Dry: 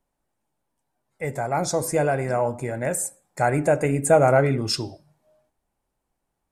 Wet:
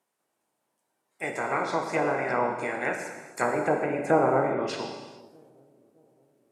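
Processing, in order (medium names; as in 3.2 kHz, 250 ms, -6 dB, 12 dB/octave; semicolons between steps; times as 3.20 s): spectral peaks clipped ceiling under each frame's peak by 19 dB; high-pass 230 Hz 12 dB/octave; low-pass that closes with the level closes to 820 Hz, closed at -17 dBFS; feedback echo behind a low-pass 615 ms, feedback 46%, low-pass 420 Hz, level -23 dB; gated-style reverb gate 470 ms falling, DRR 3 dB; trim -3.5 dB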